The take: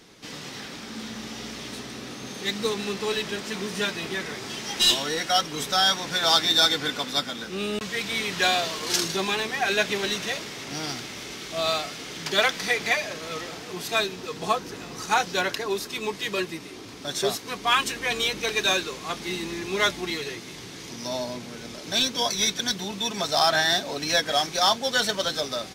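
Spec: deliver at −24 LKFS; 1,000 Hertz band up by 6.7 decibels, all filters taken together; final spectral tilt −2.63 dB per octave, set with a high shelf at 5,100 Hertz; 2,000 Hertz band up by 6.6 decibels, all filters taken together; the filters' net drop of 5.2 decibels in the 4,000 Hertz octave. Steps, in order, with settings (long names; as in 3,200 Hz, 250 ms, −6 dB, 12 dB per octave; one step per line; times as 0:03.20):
parametric band 1,000 Hz +7.5 dB
parametric band 2,000 Hz +8.5 dB
parametric band 4,000 Hz −6.5 dB
high-shelf EQ 5,100 Hz −7.5 dB
level −1.5 dB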